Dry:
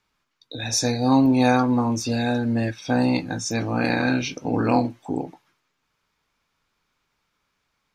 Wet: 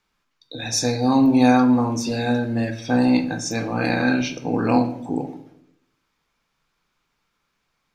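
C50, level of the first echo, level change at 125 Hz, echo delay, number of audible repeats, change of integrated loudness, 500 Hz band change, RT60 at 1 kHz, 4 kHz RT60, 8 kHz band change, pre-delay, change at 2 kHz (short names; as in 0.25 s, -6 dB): 11.5 dB, none, -0.5 dB, none, none, +2.0 dB, +1.0 dB, 0.65 s, 0.45 s, +0.5 dB, 3 ms, +1.0 dB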